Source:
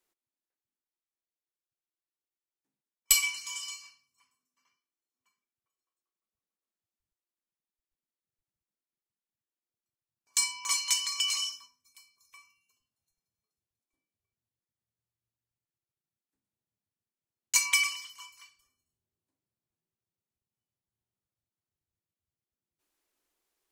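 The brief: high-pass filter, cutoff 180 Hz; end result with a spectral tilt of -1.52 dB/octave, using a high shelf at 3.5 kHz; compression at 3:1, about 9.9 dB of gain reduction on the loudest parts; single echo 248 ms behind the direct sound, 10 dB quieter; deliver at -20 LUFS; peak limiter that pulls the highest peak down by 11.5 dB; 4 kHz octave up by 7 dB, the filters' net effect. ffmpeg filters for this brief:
-af "highpass=180,highshelf=f=3500:g=9,equalizer=f=4000:t=o:g=3,acompressor=threshold=0.0708:ratio=3,alimiter=limit=0.141:level=0:latency=1,aecho=1:1:248:0.316,volume=2.66"

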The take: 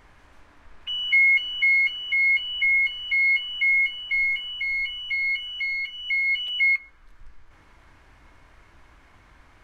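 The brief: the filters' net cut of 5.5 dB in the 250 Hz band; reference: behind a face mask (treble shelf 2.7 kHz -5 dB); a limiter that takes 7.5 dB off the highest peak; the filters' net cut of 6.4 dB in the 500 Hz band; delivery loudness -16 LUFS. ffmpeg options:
-af "equalizer=f=250:t=o:g=-5,equalizer=f=500:t=o:g=-7,alimiter=limit=0.0944:level=0:latency=1,highshelf=f=2700:g=-5,volume=3.35"

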